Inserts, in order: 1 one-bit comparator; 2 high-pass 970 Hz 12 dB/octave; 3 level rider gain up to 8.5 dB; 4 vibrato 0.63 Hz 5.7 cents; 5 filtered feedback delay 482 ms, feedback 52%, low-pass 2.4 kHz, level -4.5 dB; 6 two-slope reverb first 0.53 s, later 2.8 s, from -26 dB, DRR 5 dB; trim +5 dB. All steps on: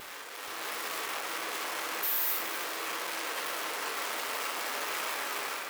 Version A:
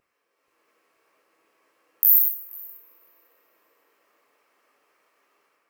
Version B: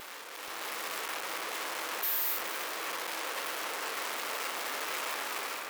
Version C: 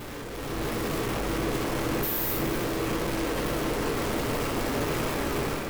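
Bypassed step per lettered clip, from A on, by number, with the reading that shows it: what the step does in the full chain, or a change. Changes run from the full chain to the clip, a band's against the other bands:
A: 1, crest factor change +12.0 dB; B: 6, echo-to-direct -1.5 dB to -5.0 dB; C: 2, 250 Hz band +20.0 dB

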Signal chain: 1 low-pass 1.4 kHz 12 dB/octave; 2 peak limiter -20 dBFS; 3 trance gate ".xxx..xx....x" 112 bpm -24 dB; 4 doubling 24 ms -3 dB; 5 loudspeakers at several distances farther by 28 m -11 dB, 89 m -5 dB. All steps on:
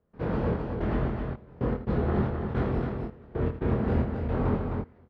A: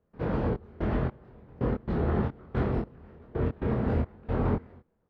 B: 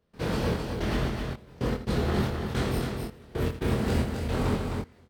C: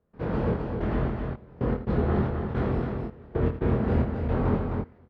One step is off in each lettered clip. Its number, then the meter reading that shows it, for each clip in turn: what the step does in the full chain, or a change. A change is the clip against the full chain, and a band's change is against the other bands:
5, echo-to-direct -4.0 dB to none; 1, 4 kHz band +16.0 dB; 2, loudness change +1.5 LU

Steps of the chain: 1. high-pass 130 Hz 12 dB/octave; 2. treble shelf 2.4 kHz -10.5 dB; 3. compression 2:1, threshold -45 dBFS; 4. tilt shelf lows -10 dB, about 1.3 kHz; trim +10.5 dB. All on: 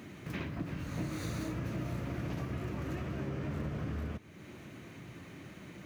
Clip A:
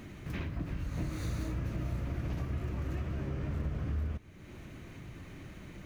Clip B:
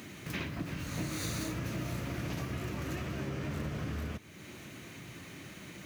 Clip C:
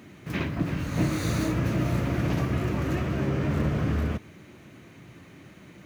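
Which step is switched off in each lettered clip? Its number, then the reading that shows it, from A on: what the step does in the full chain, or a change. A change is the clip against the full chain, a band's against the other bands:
1, 125 Hz band +5.0 dB; 2, 8 kHz band +8.5 dB; 3, mean gain reduction 7.5 dB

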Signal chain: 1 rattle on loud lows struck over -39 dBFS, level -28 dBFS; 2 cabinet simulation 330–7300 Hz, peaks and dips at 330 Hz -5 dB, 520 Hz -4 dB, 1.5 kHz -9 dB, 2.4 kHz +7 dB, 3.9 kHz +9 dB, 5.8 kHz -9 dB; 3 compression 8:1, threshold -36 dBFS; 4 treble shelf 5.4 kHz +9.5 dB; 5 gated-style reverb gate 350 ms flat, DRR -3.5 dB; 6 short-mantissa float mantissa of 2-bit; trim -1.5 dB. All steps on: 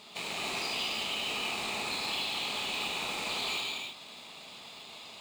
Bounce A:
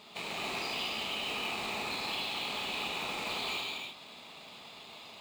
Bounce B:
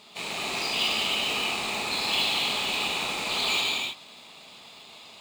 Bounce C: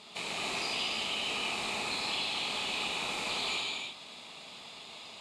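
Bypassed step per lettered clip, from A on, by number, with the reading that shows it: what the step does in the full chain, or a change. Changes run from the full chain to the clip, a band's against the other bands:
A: 4, 8 kHz band -5.5 dB; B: 3, mean gain reduction 4.0 dB; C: 6, distortion -20 dB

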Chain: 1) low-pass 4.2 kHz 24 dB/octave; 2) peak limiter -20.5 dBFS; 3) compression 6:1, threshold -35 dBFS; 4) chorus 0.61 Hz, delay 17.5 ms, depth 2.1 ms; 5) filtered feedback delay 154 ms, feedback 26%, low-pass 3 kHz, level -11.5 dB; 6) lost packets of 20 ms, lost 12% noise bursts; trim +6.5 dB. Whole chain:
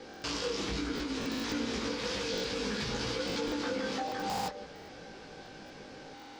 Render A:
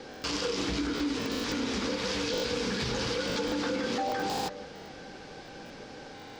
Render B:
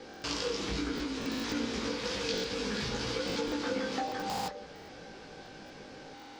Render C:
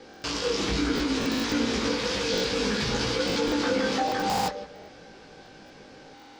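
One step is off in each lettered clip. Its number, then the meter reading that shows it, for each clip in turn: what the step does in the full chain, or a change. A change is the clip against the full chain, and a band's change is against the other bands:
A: 4, loudness change +3.0 LU; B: 2, crest factor change +3.5 dB; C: 3, momentary loudness spread change -10 LU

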